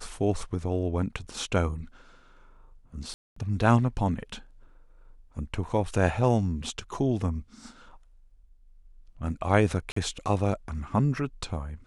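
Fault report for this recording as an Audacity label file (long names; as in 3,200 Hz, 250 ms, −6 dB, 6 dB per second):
3.140000	3.360000	drop-out 224 ms
9.920000	9.960000	drop-out 44 ms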